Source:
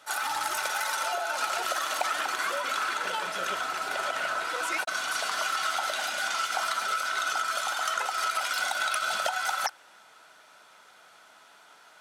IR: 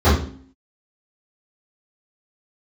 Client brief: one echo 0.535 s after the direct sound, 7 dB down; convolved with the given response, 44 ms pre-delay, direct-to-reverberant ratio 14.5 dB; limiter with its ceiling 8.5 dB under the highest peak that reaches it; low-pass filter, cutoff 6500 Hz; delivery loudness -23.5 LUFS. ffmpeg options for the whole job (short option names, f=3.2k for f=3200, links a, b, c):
-filter_complex "[0:a]lowpass=6.5k,alimiter=limit=-22dB:level=0:latency=1,aecho=1:1:535:0.447,asplit=2[a][b];[1:a]atrim=start_sample=2205,adelay=44[c];[b][c]afir=irnorm=-1:irlink=0,volume=-38.5dB[d];[a][d]amix=inputs=2:normalize=0,volume=6.5dB"